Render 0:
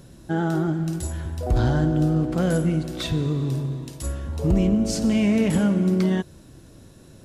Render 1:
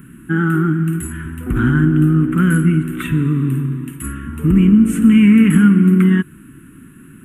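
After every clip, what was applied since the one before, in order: EQ curve 100 Hz 0 dB, 140 Hz +8 dB, 260 Hz +14 dB, 430 Hz -1 dB, 620 Hz -24 dB, 1300 Hz +15 dB, 2900 Hz +8 dB, 4800 Hz -28 dB, 8600 Hz +7 dB, 13000 Hz +12 dB; gain -1 dB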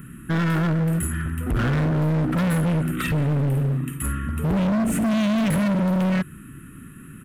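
comb 1.6 ms, depth 40%; overloaded stage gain 19.5 dB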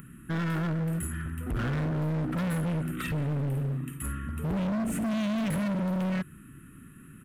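upward compressor, threshold -40 dBFS; gain -8 dB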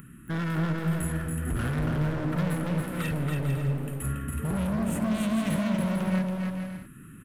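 bouncing-ball echo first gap 0.28 s, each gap 0.6×, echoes 5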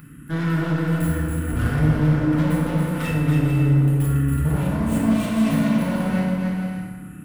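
tracing distortion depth 0.045 ms; FDN reverb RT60 1.3 s, low-frequency decay 1.25×, high-frequency decay 0.7×, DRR -4 dB

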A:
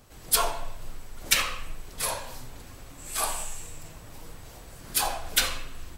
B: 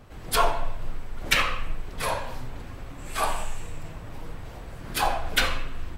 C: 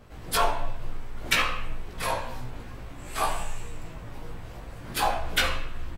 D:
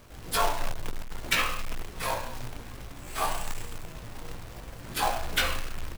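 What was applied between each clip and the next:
tone controls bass +2 dB, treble -14 dB; gain +5.5 dB
doubler 17 ms -3.5 dB; gain -2.5 dB
companded quantiser 4-bit; gain -2.5 dB

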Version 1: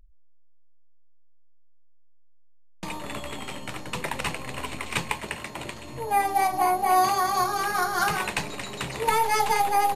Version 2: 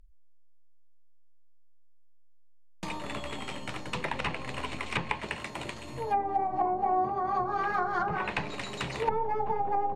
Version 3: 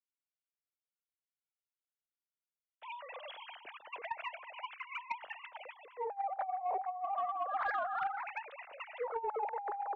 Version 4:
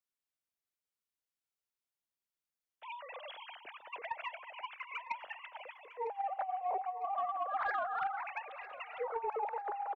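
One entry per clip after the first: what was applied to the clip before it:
treble ducked by the level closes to 630 Hz, closed at -19 dBFS; gain -2 dB
sine-wave speech; negative-ratio compressor -30 dBFS, ratio -0.5; soft clip -20.5 dBFS, distortion -24 dB; gain -4.5 dB
feedback echo 0.953 s, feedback 40%, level -16 dB

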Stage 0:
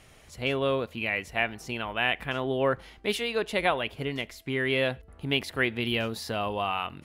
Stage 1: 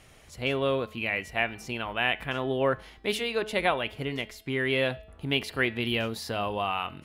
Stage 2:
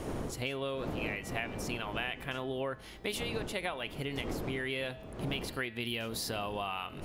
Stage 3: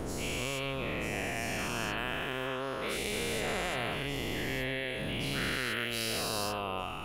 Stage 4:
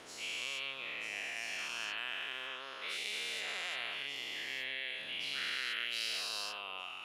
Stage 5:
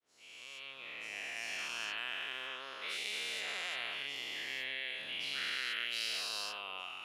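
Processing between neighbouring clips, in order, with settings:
de-hum 214.4 Hz, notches 24
wind noise 420 Hz -35 dBFS; high shelf 4800 Hz +10 dB; compressor 6:1, threshold -33 dBFS, peak gain reduction 14 dB
spectral dilation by 0.48 s; gain -6 dB
band-pass 3400 Hz, Q 0.99
opening faded in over 1.51 s

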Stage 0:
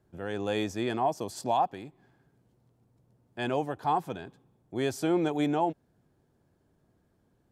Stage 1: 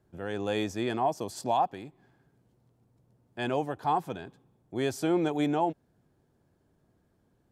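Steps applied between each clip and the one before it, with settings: nothing audible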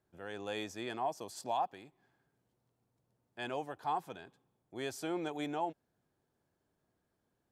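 low shelf 420 Hz -9.5 dB; gain -5.5 dB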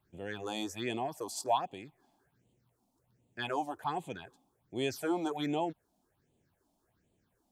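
phaser stages 6, 1.3 Hz, lowest notch 110–1500 Hz; gain +7.5 dB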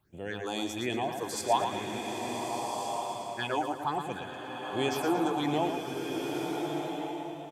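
on a send: feedback echo 0.115 s, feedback 43%, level -7 dB; on the sum: bloom reverb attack 1.45 s, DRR 2 dB; gain +3 dB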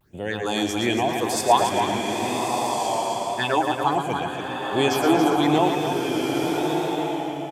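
vibrato 0.92 Hz 65 cents; on a send: echo 0.28 s -7 dB; on the sum: gain +9 dB

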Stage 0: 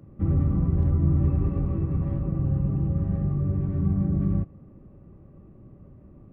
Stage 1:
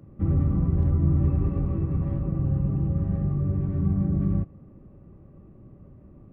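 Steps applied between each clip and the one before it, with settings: nothing audible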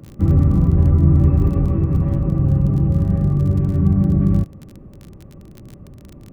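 crackle 28/s -37 dBFS; gain +8.5 dB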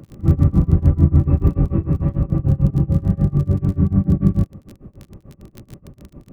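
tremolo 6.8 Hz, depth 95%; gain +3 dB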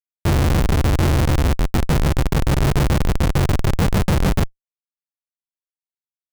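early reflections 44 ms -8 dB, 57 ms -11.5 dB; Schmitt trigger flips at -16 dBFS; gain +1.5 dB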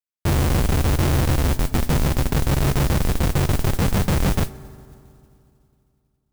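on a send at -15.5 dB: reverb RT60 2.6 s, pre-delay 4 ms; on the sum: modulation noise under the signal 17 dB; gain -2.5 dB

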